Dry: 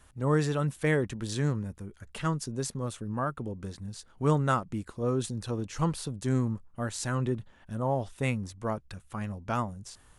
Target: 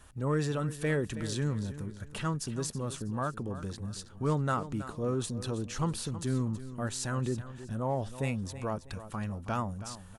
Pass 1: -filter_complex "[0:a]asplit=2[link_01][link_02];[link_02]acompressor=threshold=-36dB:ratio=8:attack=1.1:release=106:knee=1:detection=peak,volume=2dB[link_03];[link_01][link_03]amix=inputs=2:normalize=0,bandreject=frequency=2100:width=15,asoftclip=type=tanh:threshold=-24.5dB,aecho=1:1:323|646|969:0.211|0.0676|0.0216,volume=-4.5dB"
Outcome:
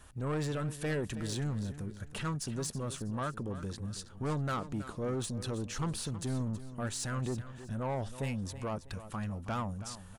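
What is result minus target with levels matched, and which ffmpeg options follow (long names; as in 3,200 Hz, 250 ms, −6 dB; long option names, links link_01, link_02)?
soft clipping: distortion +14 dB
-filter_complex "[0:a]asplit=2[link_01][link_02];[link_02]acompressor=threshold=-36dB:ratio=8:attack=1.1:release=106:knee=1:detection=peak,volume=2dB[link_03];[link_01][link_03]amix=inputs=2:normalize=0,bandreject=frequency=2100:width=15,asoftclip=type=tanh:threshold=-13dB,aecho=1:1:323|646|969:0.211|0.0676|0.0216,volume=-4.5dB"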